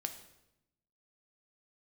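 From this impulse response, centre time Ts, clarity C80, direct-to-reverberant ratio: 12 ms, 12.5 dB, 6.0 dB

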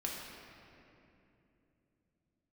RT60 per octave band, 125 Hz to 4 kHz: 4.6 s, 4.3 s, 3.1 s, 2.5 s, 2.5 s, 1.8 s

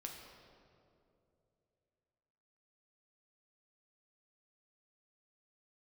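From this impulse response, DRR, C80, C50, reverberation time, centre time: 0.5 dB, 4.5 dB, 3.0 dB, 2.8 s, 74 ms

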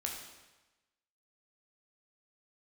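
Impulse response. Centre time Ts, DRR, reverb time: 46 ms, -0.5 dB, 1.1 s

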